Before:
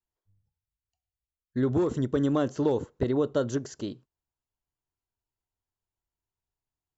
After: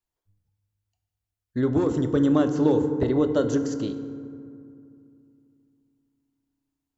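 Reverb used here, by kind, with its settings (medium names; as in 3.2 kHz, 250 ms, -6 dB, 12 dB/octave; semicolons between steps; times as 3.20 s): FDN reverb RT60 2.5 s, low-frequency decay 1.3×, high-frequency decay 0.4×, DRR 8 dB; trim +2.5 dB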